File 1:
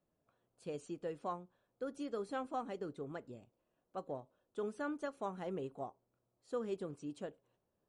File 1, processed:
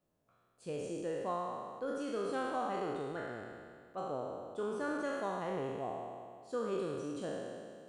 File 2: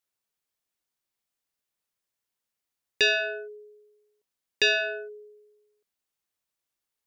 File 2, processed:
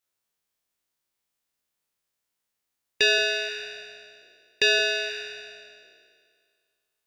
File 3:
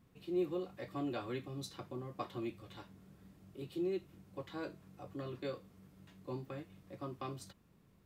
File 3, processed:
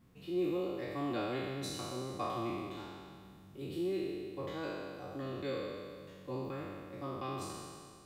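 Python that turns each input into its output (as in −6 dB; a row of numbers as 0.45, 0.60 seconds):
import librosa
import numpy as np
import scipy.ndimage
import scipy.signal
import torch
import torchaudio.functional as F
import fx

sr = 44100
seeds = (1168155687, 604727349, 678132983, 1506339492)

y = fx.spec_trails(x, sr, decay_s=2.04)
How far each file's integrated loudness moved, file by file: +4.5, +1.0, +3.5 LU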